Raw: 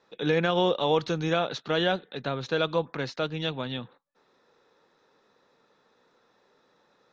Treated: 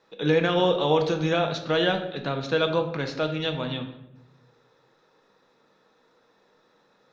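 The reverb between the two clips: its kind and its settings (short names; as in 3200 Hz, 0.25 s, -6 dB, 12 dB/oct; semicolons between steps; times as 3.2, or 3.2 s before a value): shoebox room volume 270 m³, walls mixed, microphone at 0.61 m; gain +1 dB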